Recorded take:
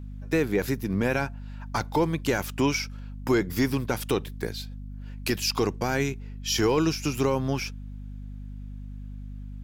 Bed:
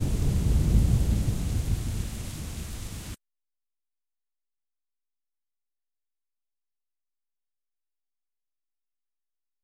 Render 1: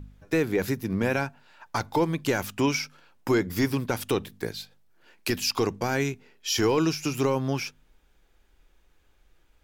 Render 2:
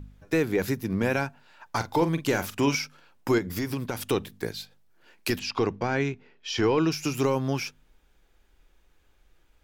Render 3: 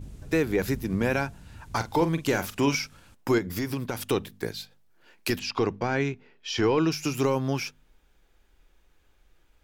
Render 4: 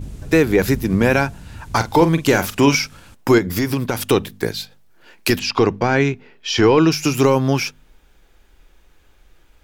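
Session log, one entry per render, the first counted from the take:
hum removal 50 Hz, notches 5
0:01.76–0:02.75: double-tracking delay 43 ms −11 dB; 0:03.38–0:04.11: downward compressor, threshold −25 dBFS; 0:05.39–0:06.92: low-pass filter 3,600 Hz
mix in bed −19 dB
level +10 dB

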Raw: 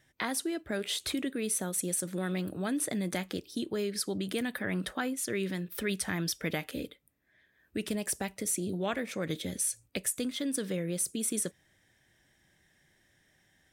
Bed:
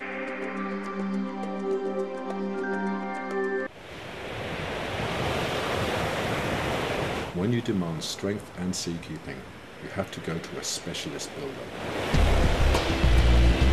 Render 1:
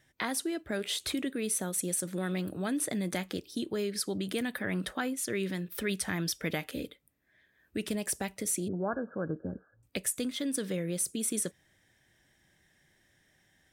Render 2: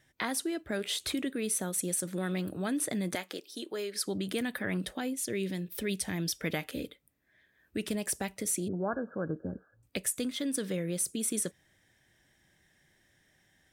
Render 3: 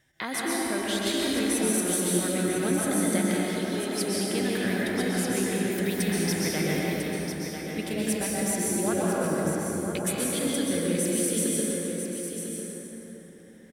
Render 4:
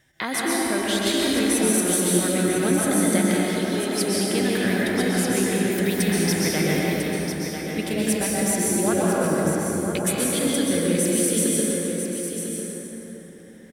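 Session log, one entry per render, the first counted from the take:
0:08.68–0:09.83: linear-phase brick-wall low-pass 1,700 Hz
0:03.15–0:04.05: high-pass filter 400 Hz; 0:04.77–0:06.33: parametric band 1,300 Hz −9.5 dB 0.99 octaves
on a send: single-tap delay 998 ms −8 dB; on the sum: dense smooth reverb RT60 4 s, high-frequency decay 0.5×, pre-delay 110 ms, DRR −6 dB
level +5 dB

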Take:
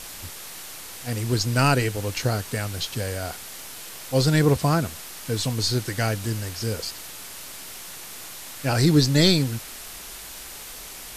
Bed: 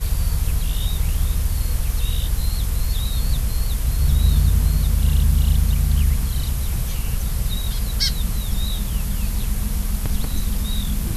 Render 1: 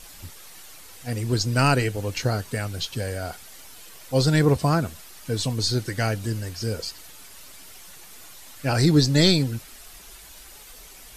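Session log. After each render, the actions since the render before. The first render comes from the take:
broadband denoise 9 dB, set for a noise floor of −39 dBFS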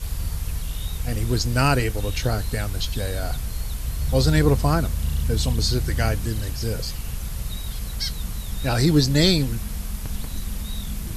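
mix in bed −7 dB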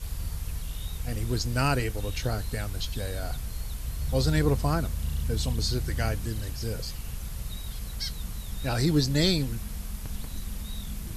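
level −6 dB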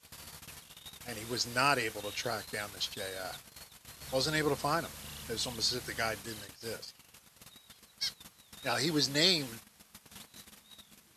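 noise gate −31 dBFS, range −16 dB
meter weighting curve A

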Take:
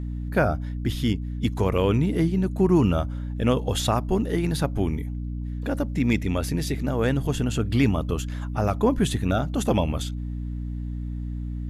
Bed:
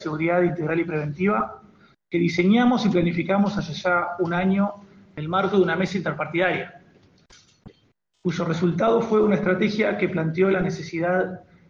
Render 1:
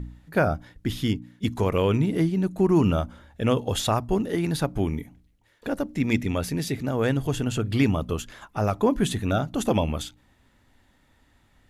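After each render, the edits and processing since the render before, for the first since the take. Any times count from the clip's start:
hum removal 60 Hz, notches 5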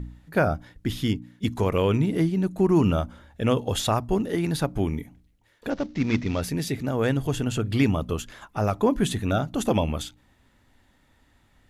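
0:05.70–0:06.42: variable-slope delta modulation 32 kbit/s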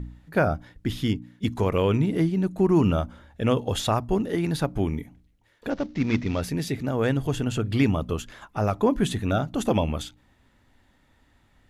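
high-shelf EQ 6,100 Hz −4.5 dB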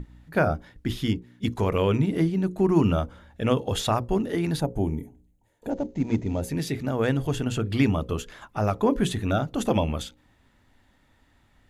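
mains-hum notches 60/120/180/240/300/360/420/480/540 Hz
0:04.60–0:06.50: gain on a spectral selection 990–6,100 Hz −11 dB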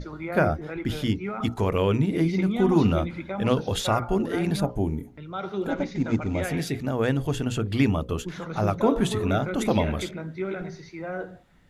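mix in bed −11 dB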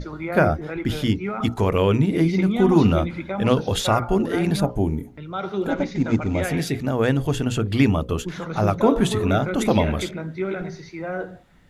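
level +4 dB

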